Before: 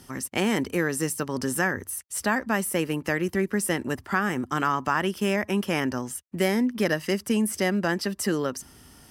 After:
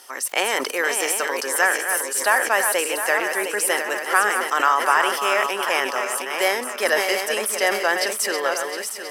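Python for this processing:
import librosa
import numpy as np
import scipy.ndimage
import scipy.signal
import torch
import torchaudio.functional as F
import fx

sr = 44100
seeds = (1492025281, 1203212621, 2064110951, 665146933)

y = fx.reverse_delay_fb(x, sr, ms=356, feedback_pct=65, wet_db=-6.5)
y = scipy.signal.sosfilt(scipy.signal.butter(4, 510.0, 'highpass', fs=sr, output='sos'), y)
y = fx.sustainer(y, sr, db_per_s=66.0)
y = F.gain(torch.from_numpy(y), 7.0).numpy()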